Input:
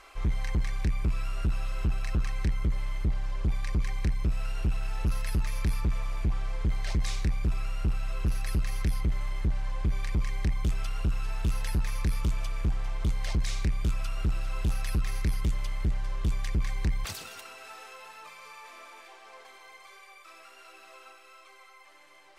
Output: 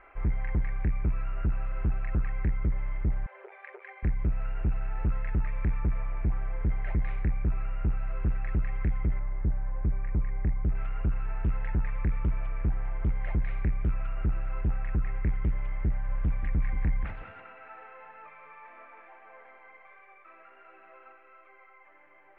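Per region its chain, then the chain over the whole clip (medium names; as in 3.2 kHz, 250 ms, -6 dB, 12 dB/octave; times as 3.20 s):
3.26–4.03 s: brick-wall FIR band-pass 370–9400 Hz + band-stop 1.1 kHz, Q 8
9.19–10.75 s: distance through air 390 m + tape noise reduction on one side only decoder only
14.61–15.25 s: CVSD coder 64 kbps + distance through air 170 m
15.91–19.99 s: band-stop 380 Hz, Q 5.3 + delay 180 ms -10.5 dB
whole clip: steep low-pass 2.2 kHz 36 dB/octave; band-stop 1.1 kHz, Q 8.7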